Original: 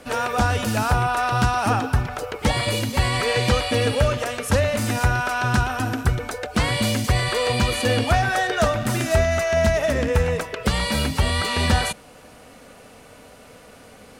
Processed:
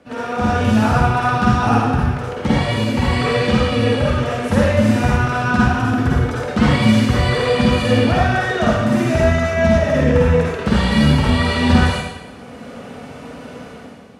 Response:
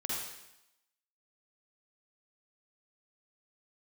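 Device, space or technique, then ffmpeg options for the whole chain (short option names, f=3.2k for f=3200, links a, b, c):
far laptop microphone: -filter_complex "[1:a]atrim=start_sample=2205[a];[0:a][a]afir=irnorm=-1:irlink=0,highpass=140,dynaudnorm=f=150:g=7:m=11.5dB,aemphasis=mode=reproduction:type=bsi,volume=-4.5dB"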